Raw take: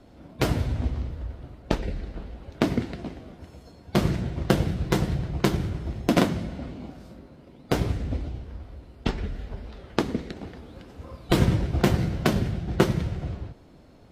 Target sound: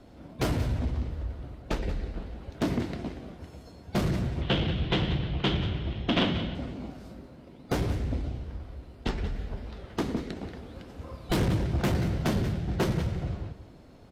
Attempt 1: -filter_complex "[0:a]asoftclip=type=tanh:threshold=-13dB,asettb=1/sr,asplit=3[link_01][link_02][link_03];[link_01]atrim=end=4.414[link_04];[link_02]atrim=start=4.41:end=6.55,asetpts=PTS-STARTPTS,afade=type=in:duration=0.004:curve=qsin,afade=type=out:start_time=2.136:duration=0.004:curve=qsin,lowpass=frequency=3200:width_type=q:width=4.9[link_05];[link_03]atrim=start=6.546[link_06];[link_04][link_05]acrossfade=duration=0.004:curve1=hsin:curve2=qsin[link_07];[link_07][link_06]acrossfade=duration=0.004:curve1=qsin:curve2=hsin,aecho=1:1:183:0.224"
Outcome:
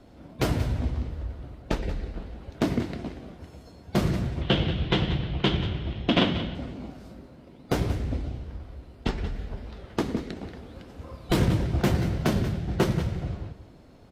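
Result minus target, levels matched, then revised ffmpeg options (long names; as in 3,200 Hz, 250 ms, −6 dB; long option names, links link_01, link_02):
soft clipping: distortion −6 dB
-filter_complex "[0:a]asoftclip=type=tanh:threshold=-20.5dB,asettb=1/sr,asplit=3[link_01][link_02][link_03];[link_01]atrim=end=4.414[link_04];[link_02]atrim=start=4.41:end=6.55,asetpts=PTS-STARTPTS,afade=type=in:duration=0.004:curve=qsin,afade=type=out:start_time=2.136:duration=0.004:curve=qsin,lowpass=frequency=3200:width_type=q:width=4.9[link_05];[link_03]atrim=start=6.546[link_06];[link_04][link_05]acrossfade=duration=0.004:curve1=hsin:curve2=qsin[link_07];[link_07][link_06]acrossfade=duration=0.004:curve1=qsin:curve2=hsin,aecho=1:1:183:0.224"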